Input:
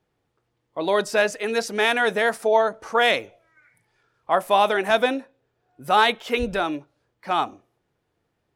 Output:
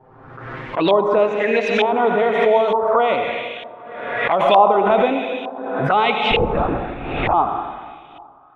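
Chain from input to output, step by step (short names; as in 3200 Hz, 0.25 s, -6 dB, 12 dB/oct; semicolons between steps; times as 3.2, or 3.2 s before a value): in parallel at -1 dB: limiter -12 dBFS, peak gain reduction 6.5 dB; on the sum: thinning echo 0.283 s, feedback 54%, high-pass 170 Hz, level -23.5 dB; envelope flanger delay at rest 7.7 ms, full sweep at -15.5 dBFS; 6.31–7.34 LPC vocoder at 8 kHz whisper; on a send at -4 dB: reverb RT60 1.8 s, pre-delay 73 ms; on the sum: LFO low-pass saw up 1.1 Hz 910–3000 Hz; backwards sustainer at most 43 dB/s; gain -1 dB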